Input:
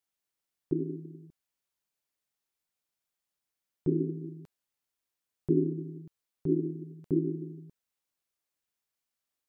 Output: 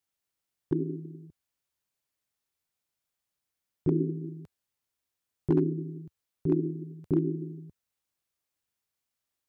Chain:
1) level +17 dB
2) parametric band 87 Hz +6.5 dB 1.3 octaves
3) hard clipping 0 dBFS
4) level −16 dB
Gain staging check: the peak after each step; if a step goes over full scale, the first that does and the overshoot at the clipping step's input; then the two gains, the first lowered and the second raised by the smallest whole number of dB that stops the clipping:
+3.0, +4.0, 0.0, −16.0 dBFS
step 1, 4.0 dB
step 1 +13 dB, step 4 −12 dB

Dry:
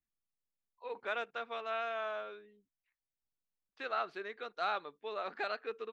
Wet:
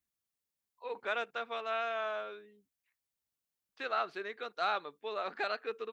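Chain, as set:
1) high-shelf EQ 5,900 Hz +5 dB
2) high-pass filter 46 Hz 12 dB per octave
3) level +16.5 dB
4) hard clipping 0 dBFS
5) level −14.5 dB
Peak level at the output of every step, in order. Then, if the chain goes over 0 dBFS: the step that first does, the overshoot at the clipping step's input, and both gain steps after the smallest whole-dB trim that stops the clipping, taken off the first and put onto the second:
−21.5, −21.5, −5.0, −5.0, −19.5 dBFS
no step passes full scale

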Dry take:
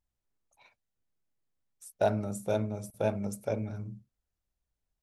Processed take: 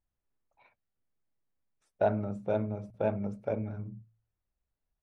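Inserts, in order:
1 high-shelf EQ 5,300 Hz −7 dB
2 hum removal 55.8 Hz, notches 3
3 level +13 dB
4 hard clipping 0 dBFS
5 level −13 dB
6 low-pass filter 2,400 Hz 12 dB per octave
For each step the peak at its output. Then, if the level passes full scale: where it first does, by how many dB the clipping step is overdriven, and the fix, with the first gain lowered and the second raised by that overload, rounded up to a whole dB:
−15.0, −15.0, −2.0, −2.0, −15.0, −15.5 dBFS
no step passes full scale

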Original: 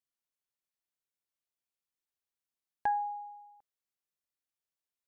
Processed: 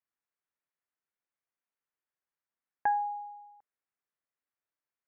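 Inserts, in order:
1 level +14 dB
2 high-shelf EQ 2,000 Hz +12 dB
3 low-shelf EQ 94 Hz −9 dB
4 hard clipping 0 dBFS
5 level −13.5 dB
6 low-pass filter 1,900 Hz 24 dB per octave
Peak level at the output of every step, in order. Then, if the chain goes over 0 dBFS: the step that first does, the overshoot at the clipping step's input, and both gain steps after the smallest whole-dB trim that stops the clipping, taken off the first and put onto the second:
−8.0, −5.0, −5.0, −5.0, −18.5, −18.5 dBFS
no step passes full scale

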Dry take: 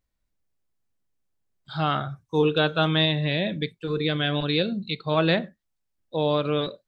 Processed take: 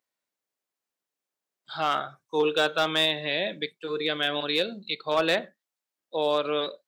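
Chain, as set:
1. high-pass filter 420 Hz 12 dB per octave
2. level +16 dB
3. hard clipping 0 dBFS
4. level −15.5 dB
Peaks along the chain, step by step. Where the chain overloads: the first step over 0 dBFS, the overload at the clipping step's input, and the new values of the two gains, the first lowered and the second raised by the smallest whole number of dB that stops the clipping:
−9.5, +6.5, 0.0, −15.5 dBFS
step 2, 6.5 dB
step 2 +9 dB, step 4 −8.5 dB

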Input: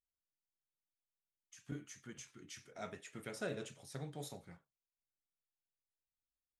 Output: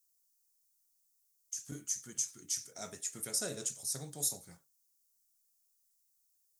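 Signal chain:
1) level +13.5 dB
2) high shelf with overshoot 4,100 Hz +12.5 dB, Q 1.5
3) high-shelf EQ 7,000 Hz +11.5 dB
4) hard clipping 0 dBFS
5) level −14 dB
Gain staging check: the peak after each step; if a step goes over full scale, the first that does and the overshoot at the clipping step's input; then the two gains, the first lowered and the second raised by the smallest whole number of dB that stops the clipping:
−15.0, −11.0, −5.0, −5.0, −19.0 dBFS
no step passes full scale

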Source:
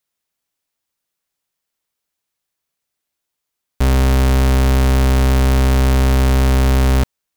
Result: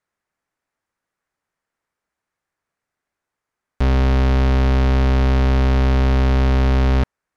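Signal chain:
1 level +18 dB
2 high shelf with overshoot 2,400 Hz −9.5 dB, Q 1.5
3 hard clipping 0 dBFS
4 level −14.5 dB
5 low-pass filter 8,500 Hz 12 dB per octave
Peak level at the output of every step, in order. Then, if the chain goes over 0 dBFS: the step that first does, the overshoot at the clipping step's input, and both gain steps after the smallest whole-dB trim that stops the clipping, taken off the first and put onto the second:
+5.5, +9.0, 0.0, −14.5, −14.0 dBFS
step 1, 9.0 dB
step 1 +9 dB, step 4 −5.5 dB

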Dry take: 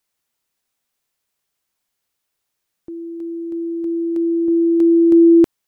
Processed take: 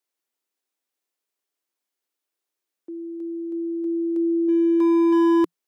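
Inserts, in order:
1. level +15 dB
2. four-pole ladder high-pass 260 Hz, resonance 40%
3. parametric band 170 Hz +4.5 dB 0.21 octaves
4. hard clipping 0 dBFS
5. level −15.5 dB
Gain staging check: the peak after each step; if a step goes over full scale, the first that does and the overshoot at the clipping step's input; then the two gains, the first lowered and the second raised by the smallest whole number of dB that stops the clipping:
+9.5, +6.5, +6.5, 0.0, −15.5 dBFS
step 1, 6.5 dB
step 1 +8 dB, step 5 −8.5 dB

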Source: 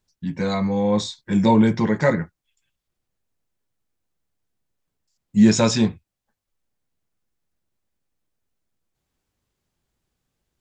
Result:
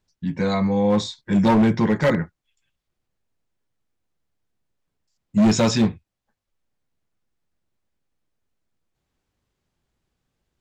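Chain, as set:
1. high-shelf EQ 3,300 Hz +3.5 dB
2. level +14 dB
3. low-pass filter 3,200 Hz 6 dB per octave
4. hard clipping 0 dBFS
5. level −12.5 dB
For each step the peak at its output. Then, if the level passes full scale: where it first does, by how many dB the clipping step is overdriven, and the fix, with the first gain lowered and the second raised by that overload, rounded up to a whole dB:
−4.0, +10.0, +9.5, 0.0, −12.5 dBFS
step 2, 9.5 dB
step 2 +4 dB, step 5 −2.5 dB

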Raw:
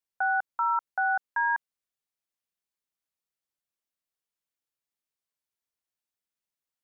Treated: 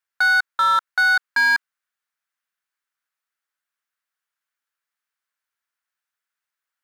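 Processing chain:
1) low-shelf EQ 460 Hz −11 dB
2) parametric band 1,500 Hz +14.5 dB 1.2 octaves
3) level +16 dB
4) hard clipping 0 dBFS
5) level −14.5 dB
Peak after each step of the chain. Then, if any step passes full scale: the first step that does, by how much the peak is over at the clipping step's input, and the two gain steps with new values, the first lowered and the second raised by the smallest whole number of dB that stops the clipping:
−20.5, −9.5, +6.5, 0.0, −14.5 dBFS
step 3, 6.5 dB
step 3 +9 dB, step 5 −7.5 dB

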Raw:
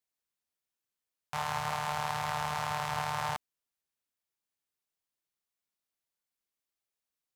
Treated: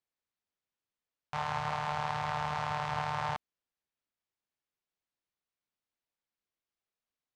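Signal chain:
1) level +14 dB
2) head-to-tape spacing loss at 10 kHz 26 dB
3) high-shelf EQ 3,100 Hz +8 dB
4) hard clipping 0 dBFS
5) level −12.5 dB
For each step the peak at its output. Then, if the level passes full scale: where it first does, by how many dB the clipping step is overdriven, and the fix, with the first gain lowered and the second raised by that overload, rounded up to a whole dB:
−3.0, −7.5, −5.5, −5.5, −18.0 dBFS
no step passes full scale

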